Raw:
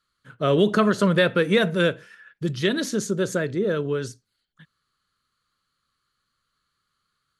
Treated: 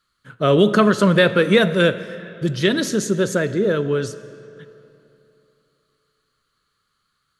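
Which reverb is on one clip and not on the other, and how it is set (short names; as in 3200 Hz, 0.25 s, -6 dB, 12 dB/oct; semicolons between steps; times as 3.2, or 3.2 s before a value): digital reverb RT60 3 s, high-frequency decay 0.75×, pre-delay 10 ms, DRR 14 dB; gain +4.5 dB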